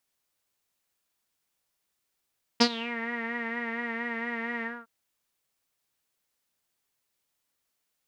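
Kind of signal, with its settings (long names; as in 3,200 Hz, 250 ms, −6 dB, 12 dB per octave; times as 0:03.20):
subtractive patch with vibrato A#4, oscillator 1 saw, interval +12 semitones, detune 17 cents, sub −1.5 dB, filter lowpass, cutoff 1,300 Hz, Q 8.3, filter envelope 2 octaves, filter decay 0.34 s, filter sustain 30%, attack 13 ms, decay 0.07 s, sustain −18 dB, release 0.23 s, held 2.03 s, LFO 4.3 Hz, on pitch 42 cents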